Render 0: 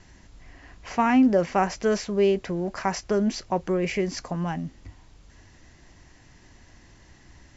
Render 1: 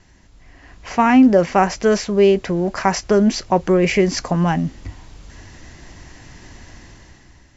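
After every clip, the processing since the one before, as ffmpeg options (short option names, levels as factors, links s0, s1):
-af "dynaudnorm=f=170:g=9:m=3.98"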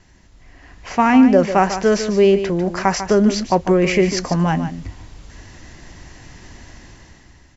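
-af "aecho=1:1:147:0.299"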